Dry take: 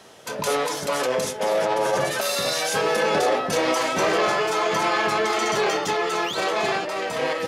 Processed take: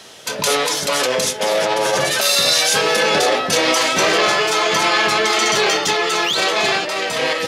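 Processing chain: EQ curve 1000 Hz 0 dB, 3800 Hz +9 dB, 13000 Hz +5 dB; gain +3.5 dB

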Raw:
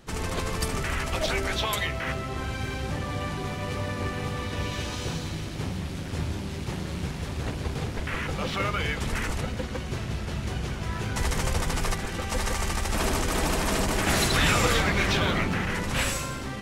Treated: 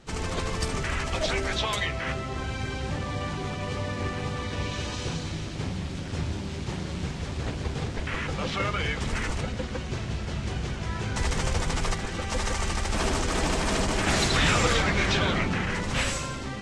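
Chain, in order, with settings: LPF 8400 Hz 24 dB/oct; Vorbis 48 kbps 48000 Hz

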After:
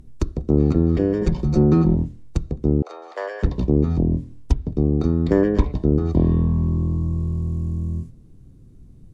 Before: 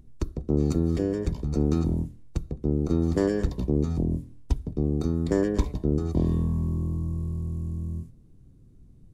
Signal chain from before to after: treble ducked by the level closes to 2600 Hz, closed at -19.5 dBFS; 1.21–1.95 comb 5.5 ms, depth 88%; 2.82–3.43 steep high-pass 570 Hz 36 dB/oct; gain +6.5 dB

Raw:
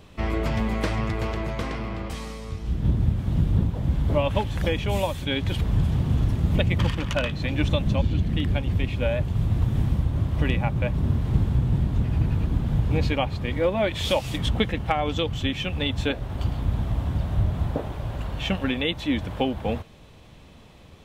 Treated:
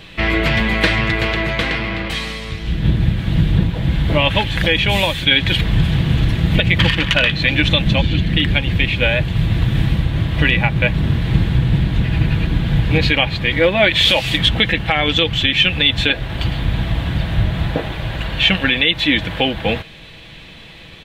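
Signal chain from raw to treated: band shelf 2600 Hz +11 dB; comb 6.1 ms, depth 34%; maximiser +8 dB; gain -1 dB

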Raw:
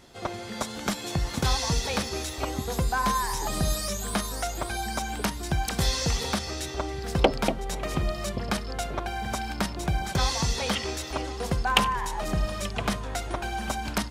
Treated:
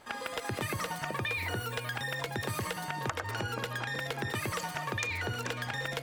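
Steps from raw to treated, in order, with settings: LPF 1300 Hz 6 dB/oct; bell 64 Hz -6.5 dB 2.7 oct; compressor 6:1, threshold -30 dBFS, peak gain reduction 14 dB; speed mistake 33 rpm record played at 78 rpm

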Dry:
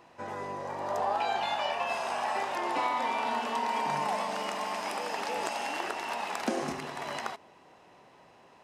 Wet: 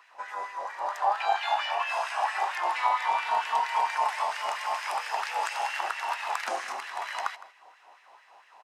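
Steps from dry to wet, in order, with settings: LFO high-pass sine 4.4 Hz 740–1900 Hz; echo 0.161 s -17.5 dB

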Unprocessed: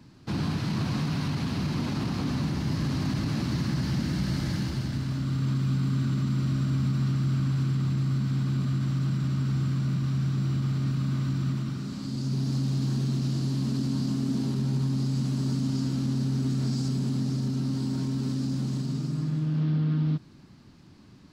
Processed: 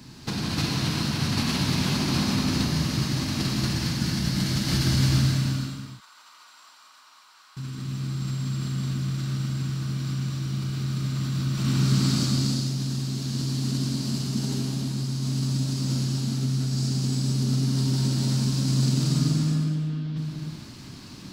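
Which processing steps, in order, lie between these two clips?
high shelf 2800 Hz +11.5 dB; negative-ratio compressor -30 dBFS, ratio -0.5; 5.52–7.57 ladder high-pass 850 Hz, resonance 60%; non-linear reverb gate 0.49 s flat, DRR -3.5 dB

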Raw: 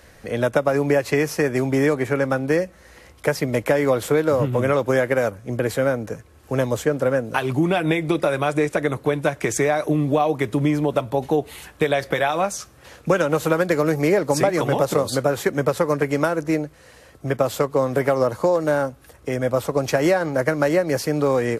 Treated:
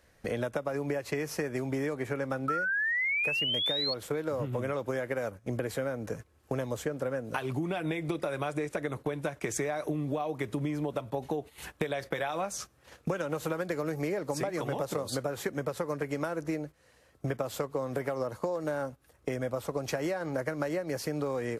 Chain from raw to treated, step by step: painted sound rise, 2.48–3.94, 1300–4400 Hz -14 dBFS; compressor 6:1, threshold -30 dBFS, peak gain reduction 18.5 dB; gate -41 dBFS, range -15 dB

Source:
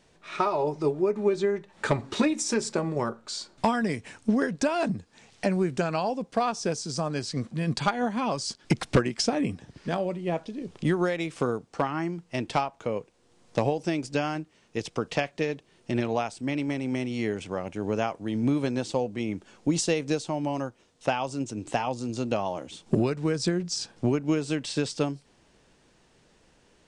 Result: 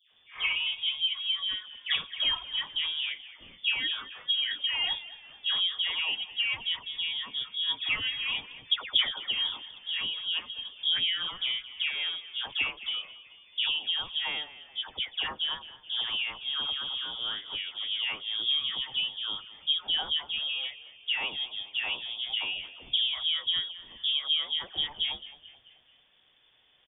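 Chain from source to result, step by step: spectral delay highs late, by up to 0.29 s; inverted band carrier 3500 Hz; frequency-shifting echo 0.217 s, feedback 50%, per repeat -48 Hz, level -16.5 dB; gain -3 dB

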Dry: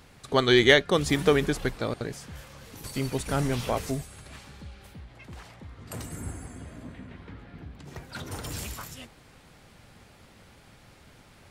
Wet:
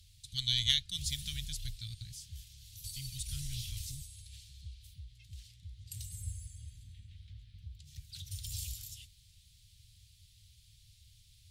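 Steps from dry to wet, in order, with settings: elliptic band-stop 100–3500 Hz, stop band 80 dB; added harmonics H 3 -23 dB, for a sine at -10.5 dBFS

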